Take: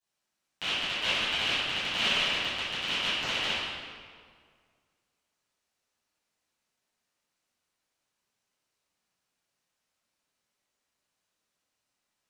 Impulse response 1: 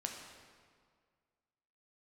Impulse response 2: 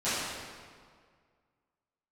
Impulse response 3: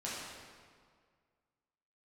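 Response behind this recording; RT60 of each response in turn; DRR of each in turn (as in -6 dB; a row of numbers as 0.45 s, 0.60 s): 2; 1.9 s, 1.9 s, 1.9 s; 1.0 dB, -16.5 dB, -8.0 dB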